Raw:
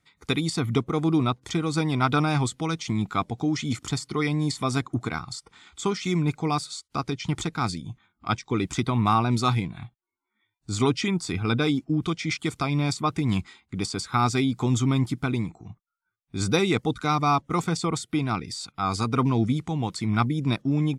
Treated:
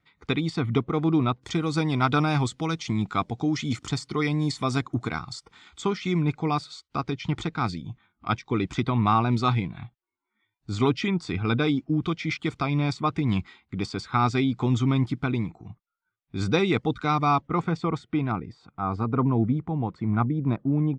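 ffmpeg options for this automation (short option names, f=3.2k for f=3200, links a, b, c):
-af "asetnsamples=n=441:p=0,asendcmd='1.4 lowpass f 6300;5.82 lowpass f 3800;17.47 lowpass f 2200;18.32 lowpass f 1200',lowpass=3.4k"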